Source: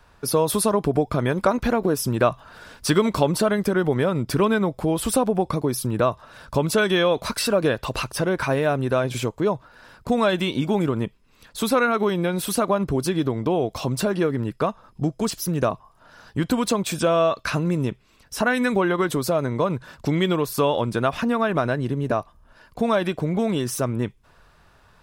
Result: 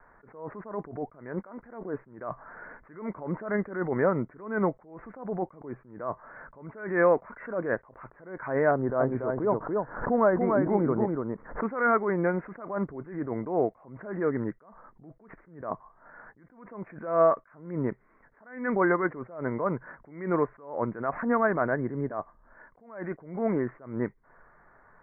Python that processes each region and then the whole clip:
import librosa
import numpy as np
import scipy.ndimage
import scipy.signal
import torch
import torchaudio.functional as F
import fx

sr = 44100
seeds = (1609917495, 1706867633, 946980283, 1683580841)

y = fx.chain(x, sr, fx.lowpass(hz=1200.0, slope=12),
    fx.echo_single(ms=288, db=-4.0),
    fx.pre_swell(db_per_s=110.0), at=(8.71, 11.63))
y = scipy.signal.sosfilt(scipy.signal.butter(16, 2100.0, 'lowpass', fs=sr, output='sos'), y)
y = fx.peak_eq(y, sr, hz=70.0, db=-15.0, octaves=2.1)
y = fx.attack_slew(y, sr, db_per_s=110.0)